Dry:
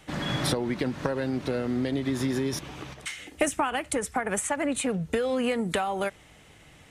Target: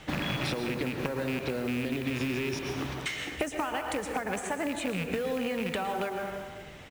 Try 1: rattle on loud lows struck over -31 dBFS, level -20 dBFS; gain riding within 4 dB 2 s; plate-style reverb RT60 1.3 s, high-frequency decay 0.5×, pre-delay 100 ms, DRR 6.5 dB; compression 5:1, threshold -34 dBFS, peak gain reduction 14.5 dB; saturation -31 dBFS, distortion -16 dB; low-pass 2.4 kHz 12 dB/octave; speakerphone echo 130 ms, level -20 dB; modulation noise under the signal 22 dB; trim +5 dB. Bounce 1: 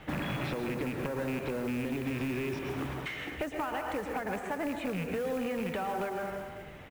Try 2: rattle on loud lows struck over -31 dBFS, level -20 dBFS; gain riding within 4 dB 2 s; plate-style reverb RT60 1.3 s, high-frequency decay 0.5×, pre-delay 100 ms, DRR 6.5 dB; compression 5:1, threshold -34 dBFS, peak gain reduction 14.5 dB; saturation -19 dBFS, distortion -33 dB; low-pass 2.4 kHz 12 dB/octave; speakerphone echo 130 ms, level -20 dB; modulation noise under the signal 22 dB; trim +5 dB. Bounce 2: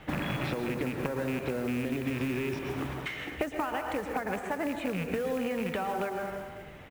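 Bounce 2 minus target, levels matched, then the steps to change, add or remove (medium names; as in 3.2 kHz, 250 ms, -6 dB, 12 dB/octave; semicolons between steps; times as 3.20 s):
8 kHz band -7.0 dB
change: low-pass 5.9 kHz 12 dB/octave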